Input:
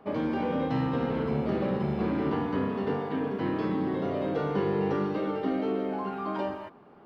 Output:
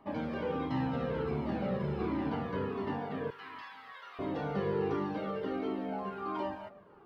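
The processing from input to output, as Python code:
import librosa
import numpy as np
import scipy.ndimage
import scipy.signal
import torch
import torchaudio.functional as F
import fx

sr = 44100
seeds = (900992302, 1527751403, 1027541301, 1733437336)

y = fx.highpass(x, sr, hz=1100.0, slope=24, at=(3.3, 4.19))
y = fx.echo_bbd(y, sr, ms=309, stages=4096, feedback_pct=32, wet_db=-22.0)
y = fx.comb_cascade(y, sr, direction='falling', hz=1.4)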